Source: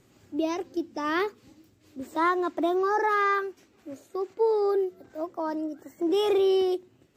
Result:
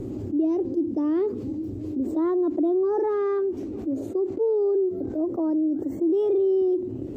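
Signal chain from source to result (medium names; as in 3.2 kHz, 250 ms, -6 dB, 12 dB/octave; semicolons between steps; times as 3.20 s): FFT filter 110 Hz 0 dB, 160 Hz -7 dB, 300 Hz +5 dB, 1.6 kHz -25 dB; level flattener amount 70%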